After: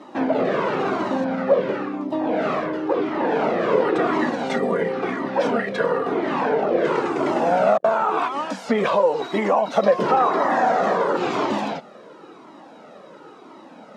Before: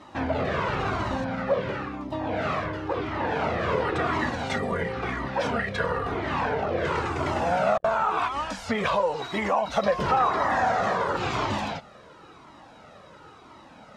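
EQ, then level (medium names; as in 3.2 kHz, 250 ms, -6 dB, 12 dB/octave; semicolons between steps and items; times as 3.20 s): high-pass 170 Hz 24 dB/octave; peaking EQ 360 Hz +9.5 dB 2.2 oct; 0.0 dB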